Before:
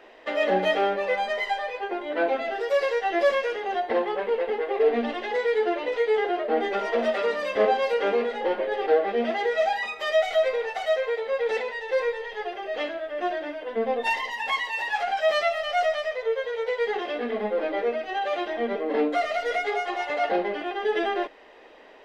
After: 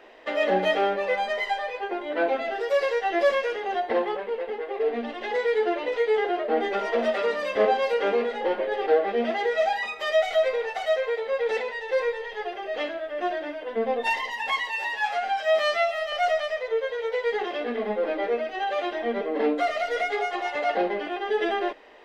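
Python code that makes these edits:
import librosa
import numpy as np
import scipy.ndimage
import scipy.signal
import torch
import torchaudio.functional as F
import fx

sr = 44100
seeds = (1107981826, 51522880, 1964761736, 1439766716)

y = fx.edit(x, sr, fx.clip_gain(start_s=4.17, length_s=1.04, db=-4.5),
    fx.stretch_span(start_s=14.76, length_s=0.91, factor=1.5), tone=tone)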